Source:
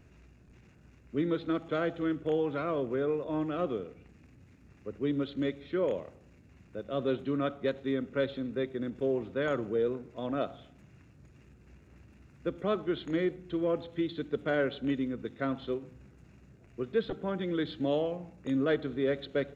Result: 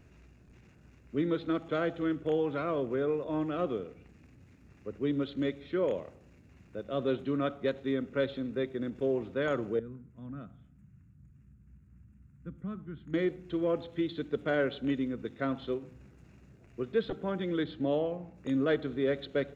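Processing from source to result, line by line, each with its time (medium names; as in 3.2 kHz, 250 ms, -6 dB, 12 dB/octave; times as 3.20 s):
9.79–13.14 s: FFT filter 200 Hz 0 dB, 360 Hz -17 dB, 640 Hz -23 dB, 1.4 kHz -12 dB, 4.4 kHz -26 dB, 7.9 kHz -11 dB
17.64–18.36 s: treble shelf 2.9 kHz -9 dB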